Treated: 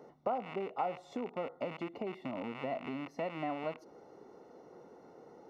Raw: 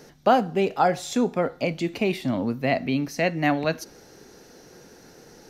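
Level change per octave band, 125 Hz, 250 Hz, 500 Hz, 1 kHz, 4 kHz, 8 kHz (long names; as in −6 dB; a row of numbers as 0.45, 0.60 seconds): −19.5 dB, −16.5 dB, −13.5 dB, −13.5 dB, −18.5 dB, below −25 dB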